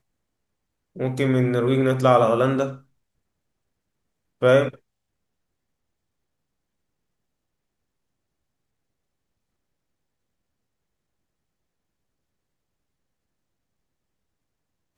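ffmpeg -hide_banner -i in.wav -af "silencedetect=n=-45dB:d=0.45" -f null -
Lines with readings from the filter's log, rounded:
silence_start: 0.00
silence_end: 0.96 | silence_duration: 0.96
silence_start: 2.81
silence_end: 4.41 | silence_duration: 1.61
silence_start: 4.76
silence_end: 14.97 | silence_duration: 10.22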